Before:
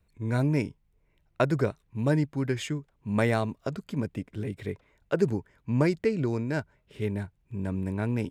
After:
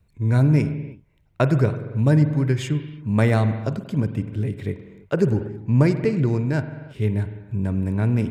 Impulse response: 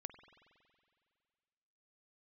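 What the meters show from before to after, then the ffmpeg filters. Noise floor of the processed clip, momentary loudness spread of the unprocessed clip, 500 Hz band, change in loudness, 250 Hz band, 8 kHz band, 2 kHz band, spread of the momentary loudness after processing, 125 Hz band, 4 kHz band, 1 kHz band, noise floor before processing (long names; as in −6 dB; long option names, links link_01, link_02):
−60 dBFS, 10 LU, +4.0 dB, +7.5 dB, +6.5 dB, can't be measured, +3.5 dB, 10 LU, +10.5 dB, +3.0 dB, +3.5 dB, −69 dBFS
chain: -filter_complex "[0:a]equalizer=frequency=110:width_type=o:width=1.7:gain=8[link_01];[1:a]atrim=start_sample=2205,afade=type=out:start_time=0.39:duration=0.01,atrim=end_sample=17640[link_02];[link_01][link_02]afir=irnorm=-1:irlink=0,volume=8dB"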